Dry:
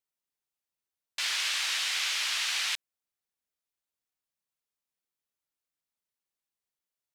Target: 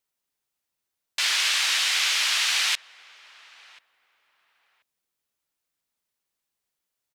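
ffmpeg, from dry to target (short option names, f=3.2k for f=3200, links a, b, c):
-filter_complex "[0:a]asplit=2[a][b];[b]adelay=1035,lowpass=f=1.2k:p=1,volume=-19dB,asplit=2[c][d];[d]adelay=1035,lowpass=f=1.2k:p=1,volume=0.27[e];[a][c][e]amix=inputs=3:normalize=0,volume=7dB"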